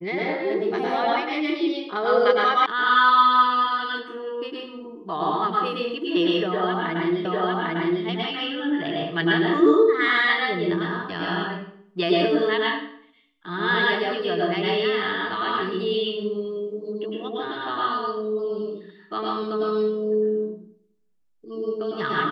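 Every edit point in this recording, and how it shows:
0:02.66: cut off before it has died away
0:07.25: the same again, the last 0.8 s

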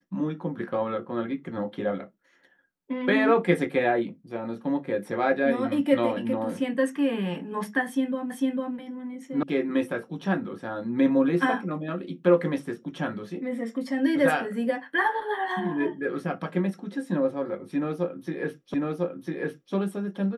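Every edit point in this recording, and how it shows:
0:08.30: the same again, the last 0.45 s
0:09.43: cut off before it has died away
0:18.74: the same again, the last 1 s

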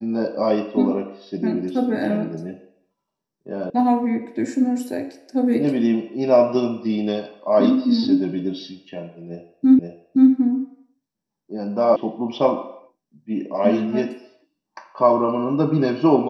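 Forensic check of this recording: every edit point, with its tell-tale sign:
0:03.70: cut off before it has died away
0:09.79: the same again, the last 0.52 s
0:11.96: cut off before it has died away

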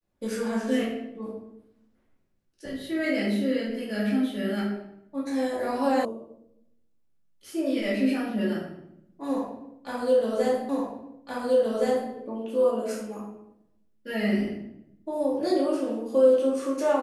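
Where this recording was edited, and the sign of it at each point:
0:06.05: cut off before it has died away
0:10.69: the same again, the last 1.42 s

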